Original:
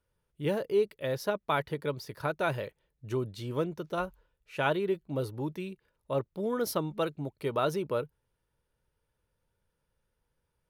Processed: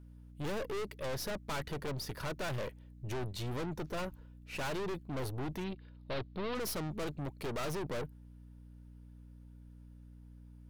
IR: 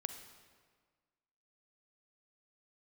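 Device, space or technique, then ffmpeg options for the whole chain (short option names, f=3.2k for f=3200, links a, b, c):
valve amplifier with mains hum: -filter_complex "[0:a]aeval=exprs='(tanh(141*val(0)+0.55)-tanh(0.55))/141':c=same,aeval=exprs='val(0)+0.00112*(sin(2*PI*60*n/s)+sin(2*PI*2*60*n/s)/2+sin(2*PI*3*60*n/s)/3+sin(2*PI*4*60*n/s)/4+sin(2*PI*5*60*n/s)/5)':c=same,asettb=1/sr,asplit=3[a][b][c];[a]atrim=end=5.644[d];[b]atrim=start=5.64:end=6.55,asetpts=PTS-STARTPTS,afade=t=in:d=0.004:c=qsin,afade=t=out:st=0.906:d=0.004:c=qsin,highshelf=f=5.5k:t=q:w=3:g=-11[e];[c]atrim=start=6.546[f];[d][e]acrossfade=d=0.004:c1=hsin:c2=qsin[g];[g][f]acrossfade=d=0.004:c1=qsin:c2=hsin,volume=7dB"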